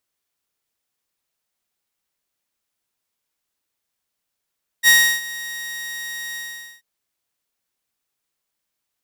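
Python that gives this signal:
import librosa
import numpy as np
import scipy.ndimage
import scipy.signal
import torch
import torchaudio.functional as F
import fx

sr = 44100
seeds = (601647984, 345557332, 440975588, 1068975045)

y = fx.adsr_tone(sr, wave='saw', hz=1880.0, attack_ms=48.0, decay_ms=325.0, sustain_db=-19.5, held_s=1.53, release_ms=456.0, level_db=-6.0)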